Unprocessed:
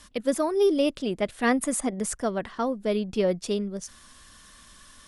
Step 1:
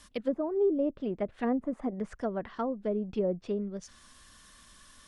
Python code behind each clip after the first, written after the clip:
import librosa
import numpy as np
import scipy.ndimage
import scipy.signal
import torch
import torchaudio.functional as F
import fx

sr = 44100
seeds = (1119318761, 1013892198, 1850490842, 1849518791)

y = fx.env_lowpass_down(x, sr, base_hz=670.0, full_db=-21.5)
y = y * librosa.db_to_amplitude(-4.5)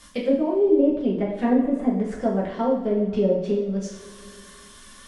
y = fx.dynamic_eq(x, sr, hz=1300.0, q=2.5, threshold_db=-54.0, ratio=4.0, max_db=-7)
y = fx.rev_double_slope(y, sr, seeds[0], early_s=0.58, late_s=2.9, knee_db=-18, drr_db=-4.5)
y = y * librosa.db_to_amplitude(3.5)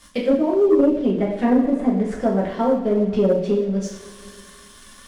y = fx.leveller(x, sr, passes=1)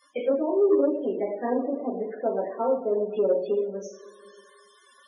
y = fx.ladder_highpass(x, sr, hz=290.0, resonance_pct=25)
y = fx.spec_topn(y, sr, count=32)